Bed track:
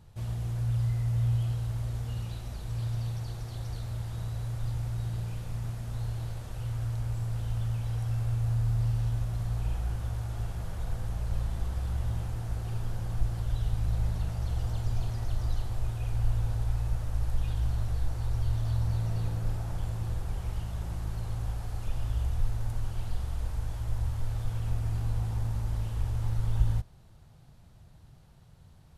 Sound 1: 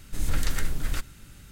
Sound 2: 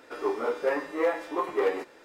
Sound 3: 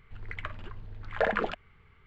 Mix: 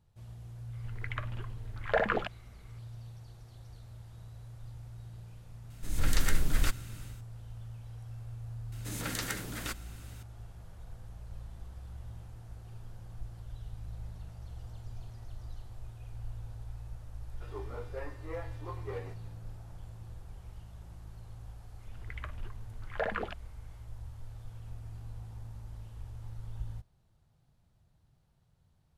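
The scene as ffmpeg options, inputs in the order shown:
-filter_complex "[3:a]asplit=2[s0][s1];[1:a]asplit=2[s2][s3];[0:a]volume=0.2[s4];[s2]dynaudnorm=f=220:g=3:m=3.16[s5];[s3]highpass=f=170:w=0.5412,highpass=f=170:w=1.3066[s6];[s0]atrim=end=2.06,asetpts=PTS-STARTPTS,volume=0.891,afade=t=in:d=0.004:c=hsin,afade=t=out:st=2.056:d=0.004:c=hsin,adelay=730[s7];[s5]atrim=end=1.51,asetpts=PTS-STARTPTS,volume=0.398,afade=t=in:d=0.004:c=hsin,afade=t=out:st=1.506:d=0.004:c=hsin,adelay=5700[s8];[s6]atrim=end=1.51,asetpts=PTS-STARTPTS,volume=0.841,afade=t=in:d=0.004:c=hsin,afade=t=out:st=1.506:d=0.004:c=hsin,adelay=8720[s9];[2:a]atrim=end=2.04,asetpts=PTS-STARTPTS,volume=0.168,afade=t=in:d=0.004:c=hsin,afade=t=out:st=2.036:d=0.004:c=hsin,adelay=17300[s10];[s1]atrim=end=2.06,asetpts=PTS-STARTPTS,volume=0.473,afade=t=in:d=0.004:c=hsin,afade=t=out:st=2.056:d=0.004:c=hsin,adelay=21790[s11];[s4][s7][s8][s9][s10][s11]amix=inputs=6:normalize=0"

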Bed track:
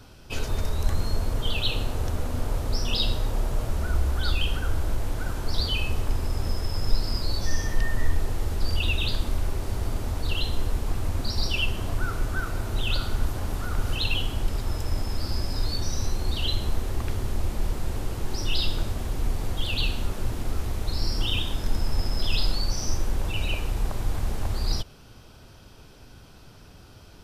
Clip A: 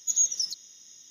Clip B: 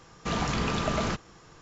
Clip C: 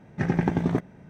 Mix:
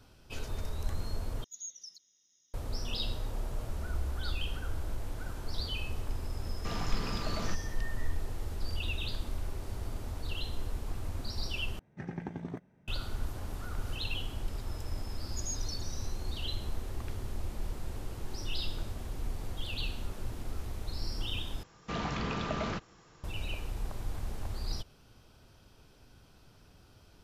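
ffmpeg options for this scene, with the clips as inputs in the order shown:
-filter_complex "[1:a]asplit=2[s0][s1];[2:a]asplit=2[s2][s3];[0:a]volume=0.316[s4];[s0]highshelf=f=9300:g=-6[s5];[s2]asoftclip=type=hard:threshold=0.0794[s6];[s3]acrossover=split=5500[s7][s8];[s8]acompressor=threshold=0.00112:ratio=4:attack=1:release=60[s9];[s7][s9]amix=inputs=2:normalize=0[s10];[s4]asplit=4[s11][s12][s13][s14];[s11]atrim=end=1.444[s15];[s5]atrim=end=1.1,asetpts=PTS-STARTPTS,volume=0.126[s16];[s12]atrim=start=2.536:end=11.794[s17];[3:a]atrim=end=1.09,asetpts=PTS-STARTPTS,volume=0.158[s18];[s13]atrim=start=12.876:end=21.634[s19];[s10]atrim=end=1.61,asetpts=PTS-STARTPTS,volume=0.501[s20];[s14]atrim=start=23.236[s21];[s6]atrim=end=1.61,asetpts=PTS-STARTPTS,volume=0.335,afade=t=in:d=0.004:c=hsin,afade=t=out:st=1.606:d=0.004:c=hsin,adelay=6390[s22];[s1]atrim=end=1.1,asetpts=PTS-STARTPTS,volume=0.158,afade=t=in:d=0.004:c=hsin,afade=t=out:st=1.096:d=0.004:c=hsin,adelay=15290[s23];[s15][s16]acrossfade=d=0.004:c1=hsin:c2=hsin[s24];[s24][s17]acrossfade=d=0.004:c1=hsin:c2=hsin[s25];[s25][s18]acrossfade=d=0.004:c1=hsin:c2=hsin[s26];[s26][s19]acrossfade=d=0.004:c1=hsin:c2=hsin[s27];[s27][s20]acrossfade=d=0.004:c1=hsin:c2=hsin[s28];[s28][s21]acrossfade=d=0.004:c1=hsin:c2=hsin[s29];[s29][s22][s23]amix=inputs=3:normalize=0"

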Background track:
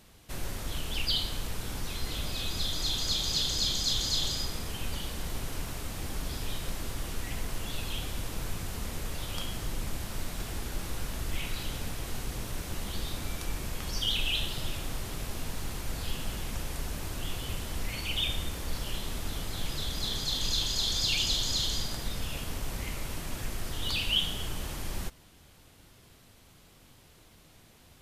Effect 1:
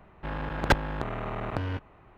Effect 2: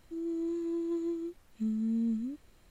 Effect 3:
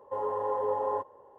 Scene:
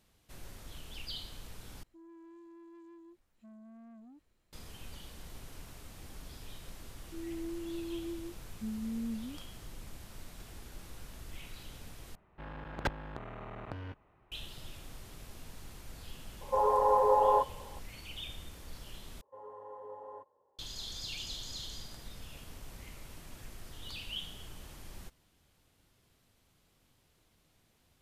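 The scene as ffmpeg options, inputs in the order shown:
-filter_complex "[2:a]asplit=2[s0][s1];[3:a]asplit=2[s2][s3];[0:a]volume=0.224[s4];[s0]asoftclip=type=tanh:threshold=0.0119[s5];[s2]equalizer=f=830:w=0.47:g=14[s6];[s4]asplit=4[s7][s8][s9][s10];[s7]atrim=end=1.834[s11];[s5]atrim=end=2.7,asetpts=PTS-STARTPTS,volume=0.211[s12];[s8]atrim=start=4.526:end=12.154[s13];[1:a]atrim=end=2.17,asetpts=PTS-STARTPTS,volume=0.266[s14];[s9]atrim=start=14.316:end=19.214[s15];[s3]atrim=end=1.38,asetpts=PTS-STARTPTS,volume=0.133[s16];[s10]atrim=start=20.586[s17];[s1]atrim=end=2.7,asetpts=PTS-STARTPTS,volume=0.473,afade=t=in:d=0.004:c=hsin,afade=t=out:st=2.696:d=0.004:c=hsin,adelay=7010[s18];[s6]atrim=end=1.38,asetpts=PTS-STARTPTS,volume=0.422,afade=t=in:d=0.004:c=hsin,afade=t=out:st=1.376:d=0.004:c=hsin,adelay=16410[s19];[s11][s12]acrossfade=d=0.004:c1=hsin:c2=hsin[s20];[s20][s13]acrossfade=d=0.004:c1=hsin:c2=hsin[s21];[s21][s14]acrossfade=d=0.004:c1=hsin:c2=hsin[s22];[s22][s15]acrossfade=d=0.004:c1=hsin:c2=hsin[s23];[s23][s16]acrossfade=d=0.004:c1=hsin:c2=hsin[s24];[s24][s17]acrossfade=d=0.004:c1=hsin:c2=hsin[s25];[s25][s18][s19]amix=inputs=3:normalize=0"

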